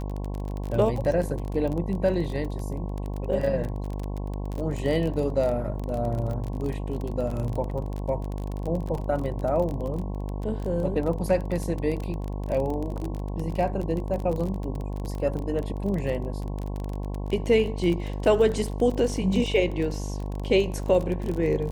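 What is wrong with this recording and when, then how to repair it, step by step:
buzz 50 Hz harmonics 22 -31 dBFS
crackle 29 per s -29 dBFS
8.98 s: dropout 2.5 ms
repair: de-click; de-hum 50 Hz, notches 22; interpolate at 8.98 s, 2.5 ms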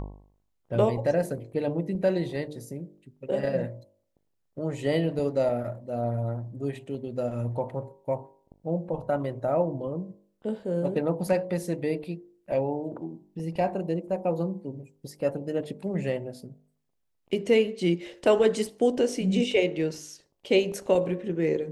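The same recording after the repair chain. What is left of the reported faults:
nothing left

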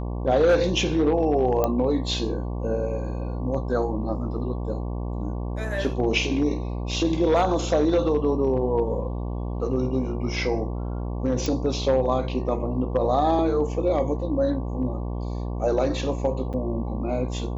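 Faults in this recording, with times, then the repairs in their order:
buzz 60 Hz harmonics 19 -29 dBFS
1.64 s: pop -10 dBFS
11.46 s: pop
16.53–16.54 s: dropout 7.4 ms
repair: de-click; de-hum 60 Hz, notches 19; interpolate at 16.53 s, 7.4 ms

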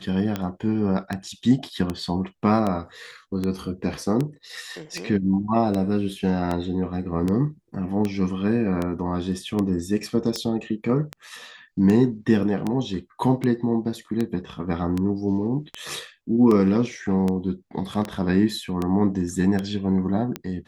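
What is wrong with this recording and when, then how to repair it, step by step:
tick 78 rpm -13 dBFS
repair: de-click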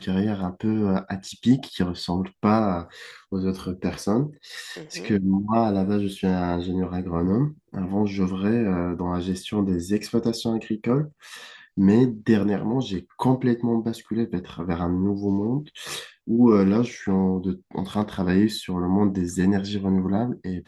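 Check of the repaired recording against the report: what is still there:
nothing left

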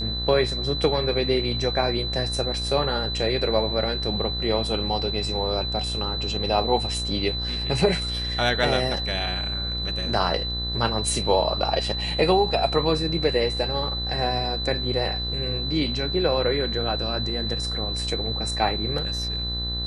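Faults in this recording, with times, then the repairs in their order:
buzz 60 Hz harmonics 33 -31 dBFS
whine 4 kHz -28 dBFS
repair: de-hum 60 Hz, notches 33; band-stop 4 kHz, Q 30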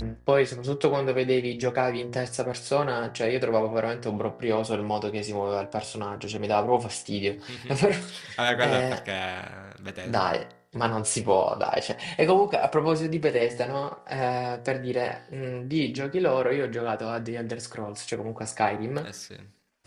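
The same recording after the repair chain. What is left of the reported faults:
nothing left

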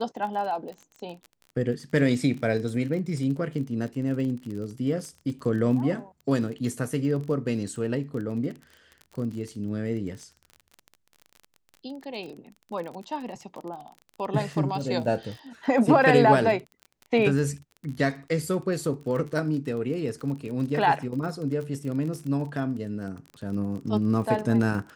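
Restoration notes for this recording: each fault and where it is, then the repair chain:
crackle 32 per s -34 dBFS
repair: de-click

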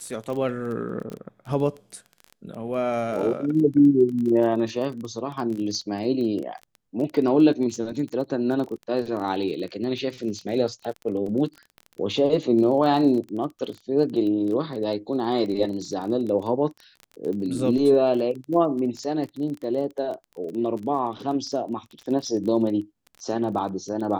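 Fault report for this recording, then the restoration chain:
crackle 22 per s -31 dBFS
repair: de-click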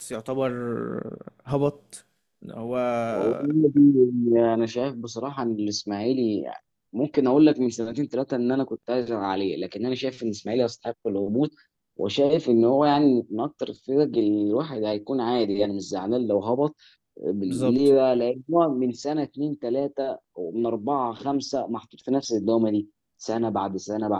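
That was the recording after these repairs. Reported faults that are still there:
nothing left

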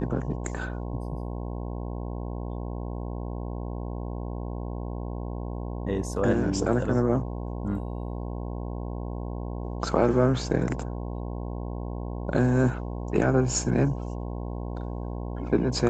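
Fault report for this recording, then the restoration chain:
buzz 60 Hz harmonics 18 -33 dBFS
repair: de-hum 60 Hz, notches 18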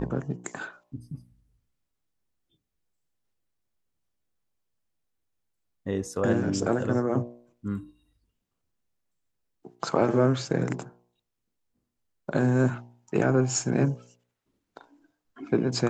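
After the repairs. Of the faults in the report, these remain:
nothing left

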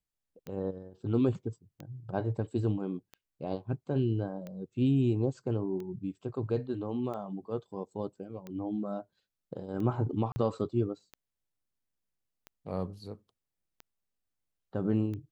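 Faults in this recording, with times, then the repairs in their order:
tick 45 rpm -29 dBFS
10.32–10.36 s: dropout 40 ms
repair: de-click; interpolate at 10.32 s, 40 ms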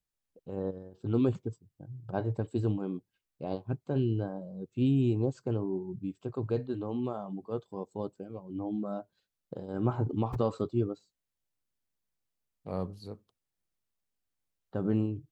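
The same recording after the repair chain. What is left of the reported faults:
nothing left

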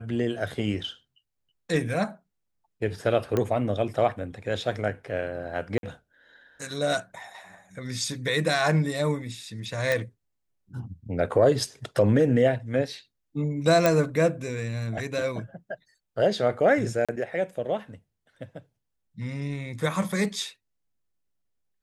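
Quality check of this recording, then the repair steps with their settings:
3.37 s: pop -13 dBFS
5.78–5.83 s: dropout 52 ms
9.92 s: pop -11 dBFS
13.86 s: pop -7 dBFS
17.05–17.09 s: dropout 36 ms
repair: de-click; interpolate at 5.78 s, 52 ms; interpolate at 17.05 s, 36 ms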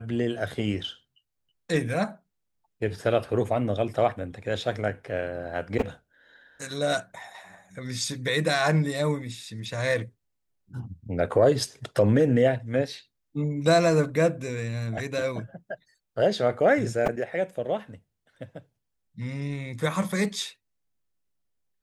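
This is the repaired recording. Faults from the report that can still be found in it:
nothing left

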